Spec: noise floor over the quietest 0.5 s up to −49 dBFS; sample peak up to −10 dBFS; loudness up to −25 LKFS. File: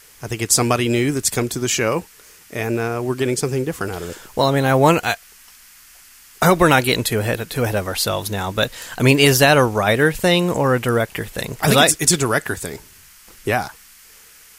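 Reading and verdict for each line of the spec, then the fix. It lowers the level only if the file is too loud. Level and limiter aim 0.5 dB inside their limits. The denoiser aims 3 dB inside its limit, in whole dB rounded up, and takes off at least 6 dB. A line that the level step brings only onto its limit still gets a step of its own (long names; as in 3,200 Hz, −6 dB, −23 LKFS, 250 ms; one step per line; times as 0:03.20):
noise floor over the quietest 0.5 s −46 dBFS: out of spec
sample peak −1.5 dBFS: out of spec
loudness −18.0 LKFS: out of spec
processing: level −7.5 dB
brickwall limiter −10.5 dBFS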